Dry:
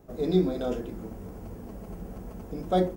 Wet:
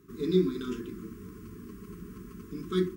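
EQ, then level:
high-pass filter 150 Hz 6 dB per octave
linear-phase brick-wall band-stop 440–1,000 Hz
0.0 dB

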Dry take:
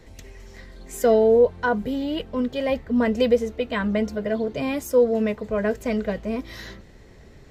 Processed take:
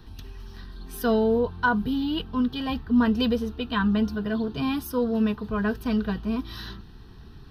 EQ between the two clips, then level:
phaser with its sweep stopped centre 2,100 Hz, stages 6
+3.5 dB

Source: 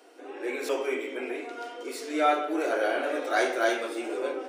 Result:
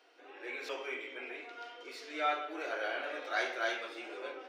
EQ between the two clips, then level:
high-frequency loss of the air 260 metres
spectral tilt +5 dB per octave
−7.0 dB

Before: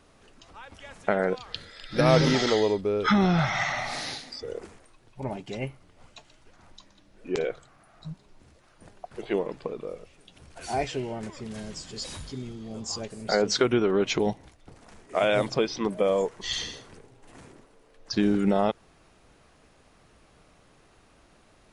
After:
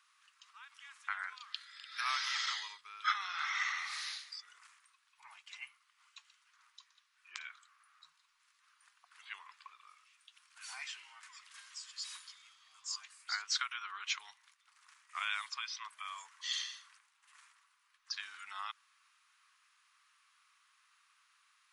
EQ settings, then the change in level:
elliptic high-pass filter 1,100 Hz, stop band 50 dB
−6.0 dB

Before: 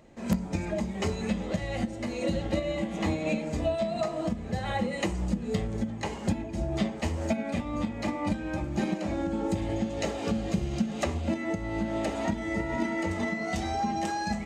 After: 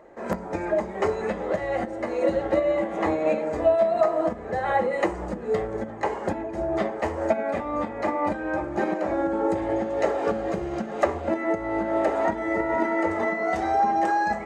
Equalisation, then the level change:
flat-topped bell 800 Hz +16 dB 2.9 octaves
−6.5 dB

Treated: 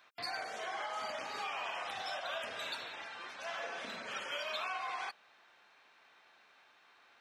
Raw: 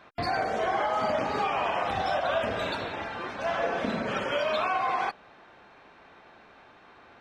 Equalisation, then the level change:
high-pass filter 91 Hz
first-order pre-emphasis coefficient 0.97
high-shelf EQ 4,000 Hz −7 dB
+5.0 dB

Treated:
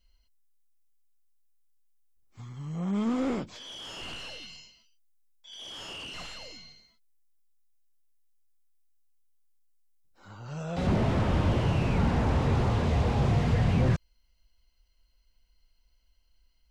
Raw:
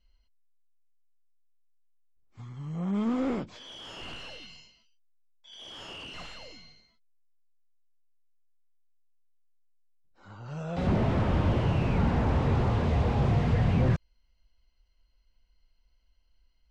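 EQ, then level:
high-shelf EQ 5,300 Hz +10.5 dB
0.0 dB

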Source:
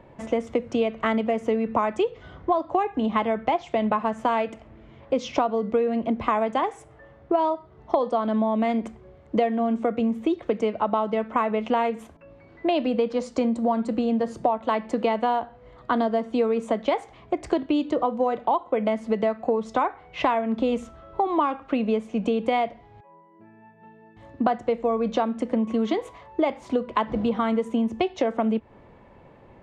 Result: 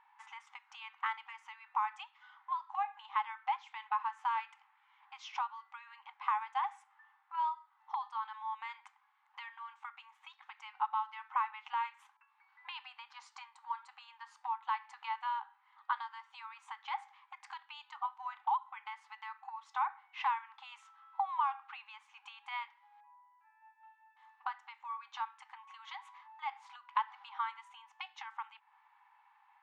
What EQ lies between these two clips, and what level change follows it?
linear-phase brick-wall high-pass 770 Hz
low-pass filter 2,400 Hz 6 dB per octave
−7.0 dB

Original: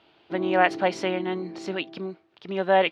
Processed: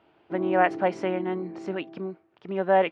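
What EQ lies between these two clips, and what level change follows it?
high-frequency loss of the air 64 metres
parametric band 4,000 Hz −13 dB 1.2 octaves
0.0 dB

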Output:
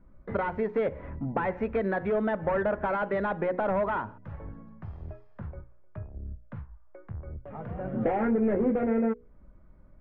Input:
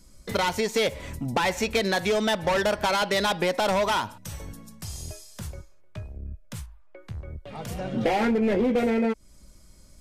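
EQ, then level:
low-pass filter 1,600 Hz 24 dB per octave
mains-hum notches 60/120/180/240/300/360/420/480 Hz
dynamic equaliser 910 Hz, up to −4 dB, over −40 dBFS, Q 1.8
−1.5 dB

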